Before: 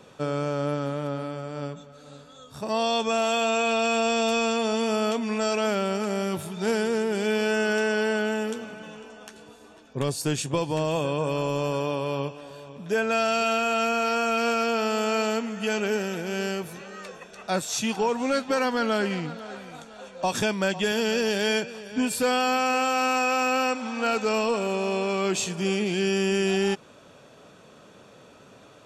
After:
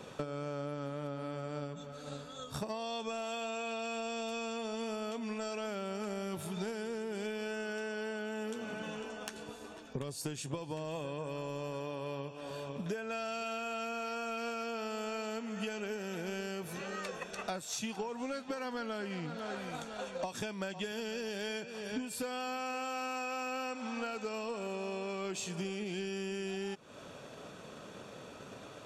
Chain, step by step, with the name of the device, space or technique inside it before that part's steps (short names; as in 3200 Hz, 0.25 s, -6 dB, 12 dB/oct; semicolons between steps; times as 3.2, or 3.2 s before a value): drum-bus smash (transient shaper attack +7 dB, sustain +1 dB; compressor 12:1, threshold -36 dBFS, peak gain reduction 20.5 dB; soft clip -25.5 dBFS, distortion -29 dB); gain +1 dB